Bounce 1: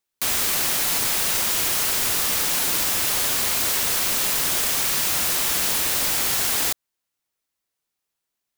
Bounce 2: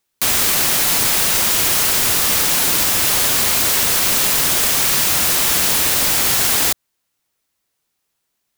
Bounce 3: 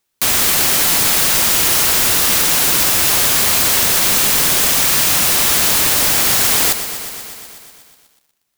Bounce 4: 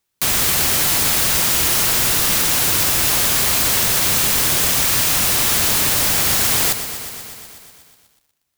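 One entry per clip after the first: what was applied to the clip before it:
in parallel at +1.5 dB: peak limiter -18 dBFS, peak gain reduction 9 dB; on the sum: peaking EQ 120 Hz +2.5 dB 2.3 oct; trim +2 dB
bit-crushed delay 122 ms, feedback 80%, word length 7-bit, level -11.5 dB; trim +1.5 dB
octave divider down 1 oct, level +1 dB; trim -3 dB

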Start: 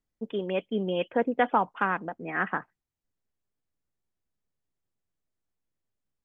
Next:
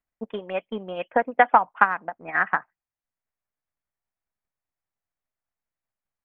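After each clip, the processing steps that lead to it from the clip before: transient shaper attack +11 dB, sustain -1 dB; high-order bell 1.2 kHz +10.5 dB 2.3 oct; trim -9.5 dB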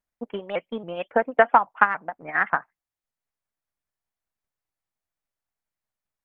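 vibrato with a chosen wave saw up 3.6 Hz, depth 160 cents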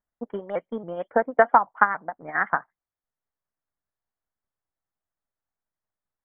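Savitzky-Golay filter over 41 samples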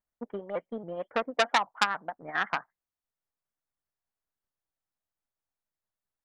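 transformer saturation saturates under 3.2 kHz; trim -3.5 dB

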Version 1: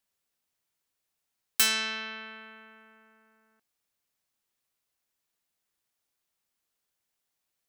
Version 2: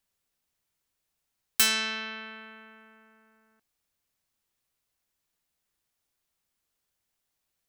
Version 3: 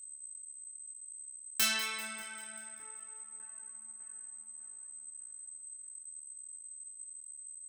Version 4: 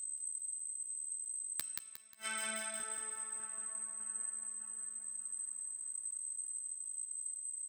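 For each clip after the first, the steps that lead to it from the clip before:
bass shelf 120 Hz +9 dB; trim +1 dB
whistle 8.2 kHz -39 dBFS; two-band feedback delay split 1.6 kHz, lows 601 ms, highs 196 ms, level -13 dB; chorus voices 6, 0.44 Hz, delay 27 ms, depth 3.4 ms; trim -3 dB
inverted gate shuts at -32 dBFS, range -41 dB; doubling 12 ms -12 dB; feedback delay 179 ms, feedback 38%, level -3 dB; trim +6.5 dB

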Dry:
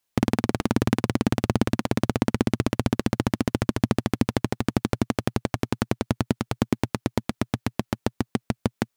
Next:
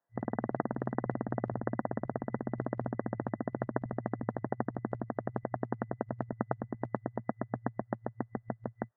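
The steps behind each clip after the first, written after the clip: FFT band-pass 110–2000 Hz; peaking EQ 660 Hz +9 dB 0.78 oct; compressor with a negative ratio -25 dBFS, ratio -1; trim -8 dB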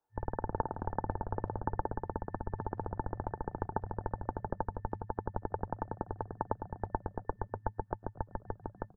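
small resonant body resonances 1.1 kHz, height 18 dB, ringing for 40 ms; frequency-shifting echo 245 ms, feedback 52%, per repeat -150 Hz, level -20 dB; frequency shift -220 Hz; trim -3 dB

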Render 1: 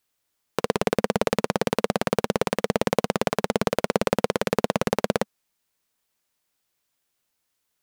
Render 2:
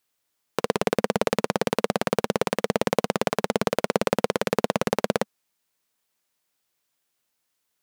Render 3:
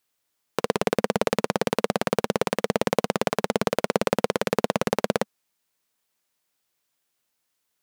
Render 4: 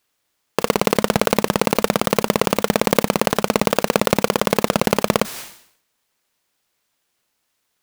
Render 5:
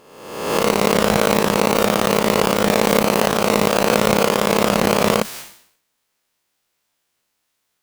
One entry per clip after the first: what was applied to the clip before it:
bass shelf 78 Hz -8.5 dB
no audible change
square wave that keeps the level; decay stretcher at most 92 dB/s; trim +2 dB
reverse spectral sustain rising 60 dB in 0.99 s; trim -3 dB

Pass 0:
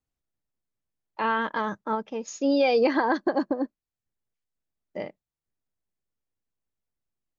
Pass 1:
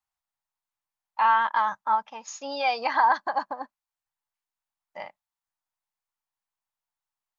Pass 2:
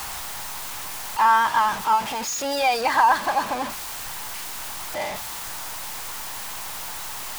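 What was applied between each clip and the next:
resonant low shelf 590 Hz -14 dB, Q 3
jump at every zero crossing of -26.5 dBFS; trim +2 dB

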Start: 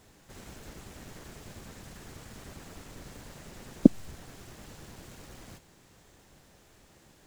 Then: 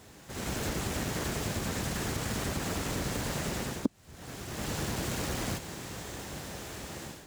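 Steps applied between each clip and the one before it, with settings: level rider gain up to 13 dB; high-pass 51 Hz; compression 5:1, threshold -35 dBFS, peak gain reduction 23.5 dB; trim +5.5 dB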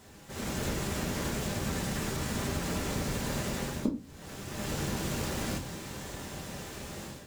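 simulated room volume 140 m³, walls furnished, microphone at 1.2 m; trim -2.5 dB

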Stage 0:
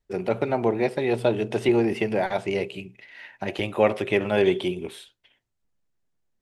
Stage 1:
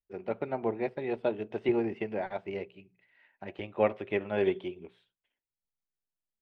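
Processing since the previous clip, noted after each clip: low-pass 2.7 kHz 12 dB/octave; hum notches 60/120/180 Hz; upward expansion 1.5:1, over -42 dBFS; trim -5.5 dB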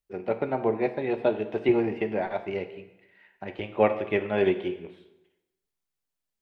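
plate-style reverb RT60 0.95 s, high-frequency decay 0.85×, DRR 8.5 dB; trim +5 dB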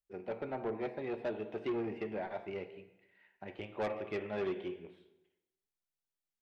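saturation -21 dBFS, distortion -11 dB; trim -9 dB

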